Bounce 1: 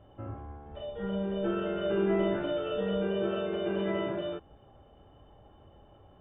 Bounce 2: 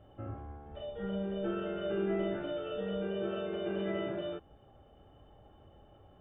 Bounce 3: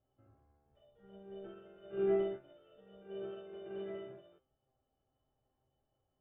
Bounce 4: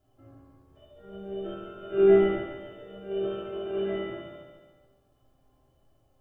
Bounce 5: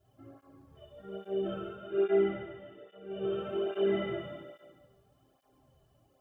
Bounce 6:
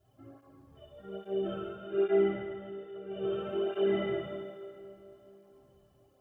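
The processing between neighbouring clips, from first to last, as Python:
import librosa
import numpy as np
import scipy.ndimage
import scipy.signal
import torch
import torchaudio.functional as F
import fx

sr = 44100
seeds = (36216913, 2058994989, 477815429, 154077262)

y1 = fx.notch(x, sr, hz=1000.0, q=12.0)
y1 = fx.rider(y1, sr, range_db=3, speed_s=2.0)
y1 = y1 * 10.0 ** (-4.5 / 20.0)
y2 = fx.comb_fb(y1, sr, f0_hz=130.0, decay_s=0.39, harmonics='all', damping=0.0, mix_pct=80)
y2 = fx.upward_expand(y2, sr, threshold_db=-48.0, expansion=2.5)
y2 = y2 * 10.0 ** (6.5 / 20.0)
y3 = fx.echo_feedback(y2, sr, ms=142, feedback_pct=52, wet_db=-7.5)
y3 = fx.room_shoebox(y3, sr, seeds[0], volume_m3=730.0, walls='furnished', distance_m=3.1)
y3 = y3 * 10.0 ** (8.5 / 20.0)
y4 = fx.rider(y3, sr, range_db=4, speed_s=0.5)
y4 = fx.flanger_cancel(y4, sr, hz=1.2, depth_ms=4.0)
y5 = fx.rev_freeverb(y4, sr, rt60_s=3.7, hf_ratio=0.7, predelay_ms=0, drr_db=13.5)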